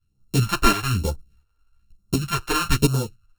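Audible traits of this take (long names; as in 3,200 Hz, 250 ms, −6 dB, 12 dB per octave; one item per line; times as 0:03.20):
a buzz of ramps at a fixed pitch in blocks of 32 samples
phaser sweep stages 2, 1.1 Hz, lowest notch 130–2,000 Hz
tremolo saw up 1.4 Hz, depth 65%
a shimmering, thickened sound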